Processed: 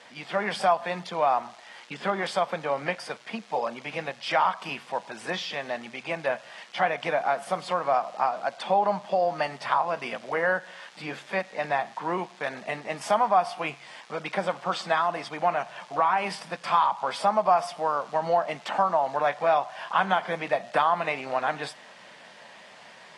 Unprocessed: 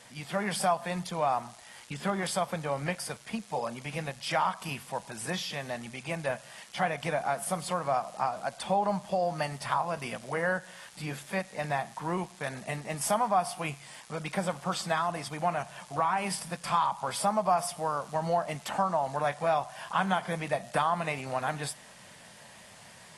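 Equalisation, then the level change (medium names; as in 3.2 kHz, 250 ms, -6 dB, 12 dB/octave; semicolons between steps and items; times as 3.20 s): band-pass 290–4100 Hz; +5.0 dB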